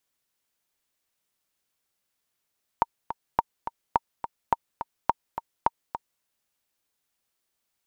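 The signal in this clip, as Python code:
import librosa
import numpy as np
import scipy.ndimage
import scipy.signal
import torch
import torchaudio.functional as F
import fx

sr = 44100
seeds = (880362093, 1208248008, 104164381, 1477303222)

y = fx.click_track(sr, bpm=211, beats=2, bars=6, hz=926.0, accent_db=10.5, level_db=-6.5)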